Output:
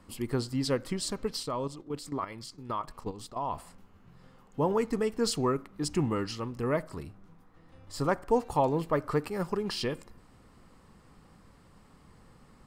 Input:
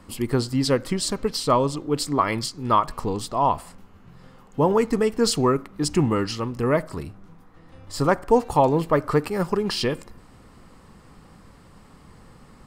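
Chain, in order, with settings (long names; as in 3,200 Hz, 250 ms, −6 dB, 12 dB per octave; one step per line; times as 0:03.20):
0:01.43–0:03.53: output level in coarse steps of 12 dB
level −8 dB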